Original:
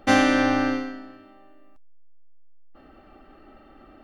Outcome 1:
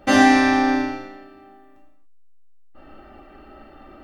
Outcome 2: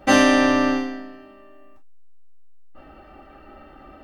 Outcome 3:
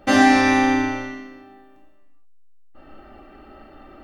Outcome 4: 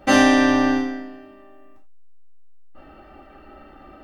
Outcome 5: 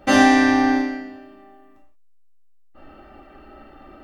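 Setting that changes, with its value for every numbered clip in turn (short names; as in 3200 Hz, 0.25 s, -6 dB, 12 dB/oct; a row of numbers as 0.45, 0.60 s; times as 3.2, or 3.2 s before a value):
non-linear reverb, gate: 320, 80, 510, 120, 210 ms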